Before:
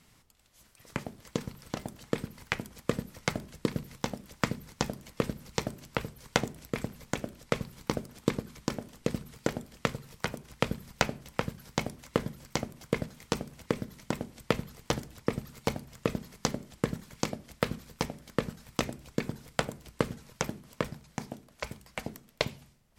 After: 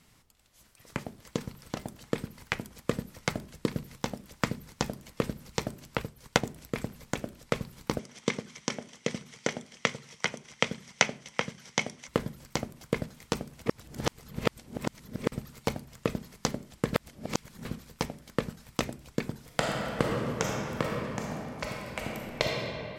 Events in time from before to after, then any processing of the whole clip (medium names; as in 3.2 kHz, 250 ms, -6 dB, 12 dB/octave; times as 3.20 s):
5.98–6.44 s: transient shaper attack +2 dB, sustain -4 dB
7.99–12.08 s: cabinet simulation 170–9500 Hz, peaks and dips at 310 Hz -5 dB, 2.1 kHz +9 dB, 3.2 kHz +7 dB, 5.9 kHz +10 dB
13.66–15.32 s: reverse
16.94–17.65 s: reverse
19.44–22.47 s: reverb throw, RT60 2.7 s, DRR -2.5 dB